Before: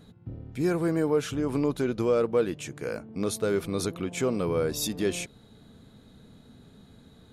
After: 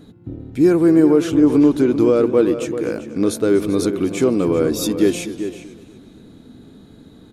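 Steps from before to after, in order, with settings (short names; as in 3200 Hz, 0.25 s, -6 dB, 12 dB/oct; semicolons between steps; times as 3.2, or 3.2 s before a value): bell 310 Hz +11.5 dB 0.67 oct; outdoor echo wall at 67 m, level -10 dB; warbling echo 0.245 s, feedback 42%, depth 111 cents, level -16.5 dB; gain +5 dB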